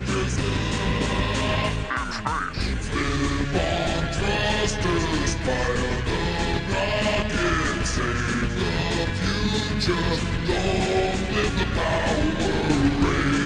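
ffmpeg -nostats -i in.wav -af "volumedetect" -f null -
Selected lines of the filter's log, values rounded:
mean_volume: -23.3 dB
max_volume: -8.4 dB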